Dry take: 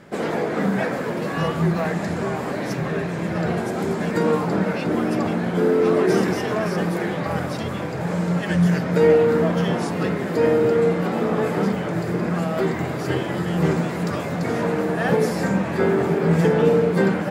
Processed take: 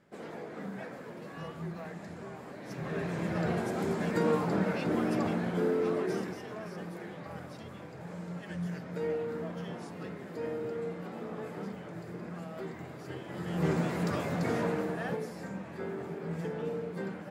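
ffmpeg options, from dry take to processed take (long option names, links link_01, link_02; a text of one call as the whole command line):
ffmpeg -i in.wav -af "volume=3.5dB,afade=type=in:start_time=2.63:duration=0.48:silence=0.281838,afade=type=out:start_time=5.27:duration=1.11:silence=0.298538,afade=type=in:start_time=13.24:duration=0.63:silence=0.266073,afade=type=out:start_time=14.49:duration=0.76:silence=0.251189" out.wav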